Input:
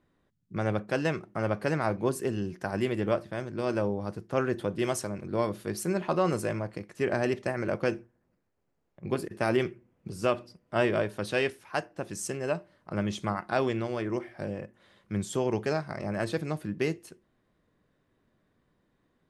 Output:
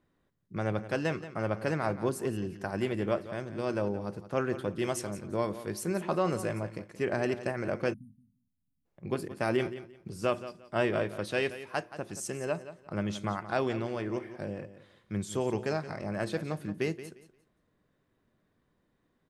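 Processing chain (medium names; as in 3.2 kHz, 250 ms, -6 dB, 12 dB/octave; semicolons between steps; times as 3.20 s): feedback delay 175 ms, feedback 22%, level -13.5 dB; spectral selection erased 7.94–8.85 s, 290–8900 Hz; trim -2.5 dB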